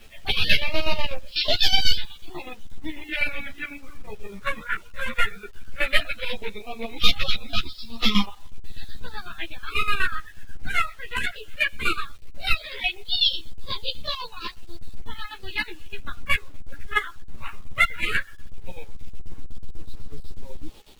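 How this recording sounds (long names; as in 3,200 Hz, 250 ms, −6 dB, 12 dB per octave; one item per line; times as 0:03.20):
phaser sweep stages 4, 0.16 Hz, lowest notch 780–1,600 Hz
chopped level 8.1 Hz, depth 65%, duty 50%
a quantiser's noise floor 10 bits, dither none
a shimmering, thickened sound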